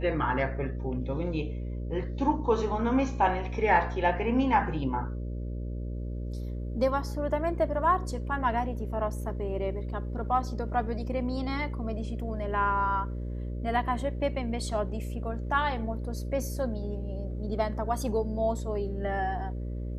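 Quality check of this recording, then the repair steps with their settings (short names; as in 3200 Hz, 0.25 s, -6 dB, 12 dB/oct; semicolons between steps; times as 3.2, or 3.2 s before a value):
buzz 60 Hz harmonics 10 -34 dBFS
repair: de-hum 60 Hz, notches 10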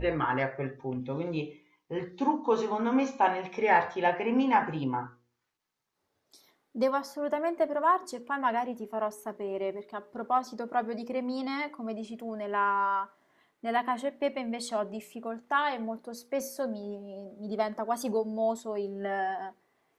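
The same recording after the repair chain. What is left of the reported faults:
none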